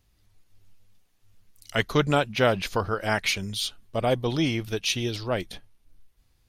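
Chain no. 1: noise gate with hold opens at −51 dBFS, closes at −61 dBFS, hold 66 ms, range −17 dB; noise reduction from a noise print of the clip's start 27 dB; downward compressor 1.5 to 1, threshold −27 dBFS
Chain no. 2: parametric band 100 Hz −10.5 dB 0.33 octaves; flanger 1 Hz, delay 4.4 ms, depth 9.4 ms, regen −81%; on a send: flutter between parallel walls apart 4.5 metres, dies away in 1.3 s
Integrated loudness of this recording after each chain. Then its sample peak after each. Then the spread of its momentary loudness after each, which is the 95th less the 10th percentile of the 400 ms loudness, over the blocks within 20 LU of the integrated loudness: −28.5, −25.0 LKFS; −11.0, −8.0 dBFS; 5, 7 LU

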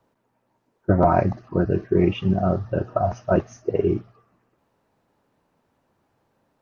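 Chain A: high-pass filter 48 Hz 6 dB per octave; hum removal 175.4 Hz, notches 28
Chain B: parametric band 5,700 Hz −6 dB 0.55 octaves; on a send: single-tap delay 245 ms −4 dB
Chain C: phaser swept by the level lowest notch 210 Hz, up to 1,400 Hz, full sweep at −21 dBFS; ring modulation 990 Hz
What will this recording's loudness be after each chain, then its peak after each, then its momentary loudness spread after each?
−23.0, −21.5, −25.5 LKFS; −5.5, −5.0, −7.0 dBFS; 7, 7, 7 LU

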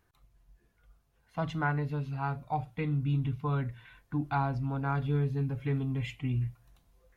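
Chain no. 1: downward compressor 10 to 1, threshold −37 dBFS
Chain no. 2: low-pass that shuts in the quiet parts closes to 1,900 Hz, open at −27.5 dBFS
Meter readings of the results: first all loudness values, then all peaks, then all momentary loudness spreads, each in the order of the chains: −42.0, −32.5 LKFS; −26.0, −17.5 dBFS; 5, 7 LU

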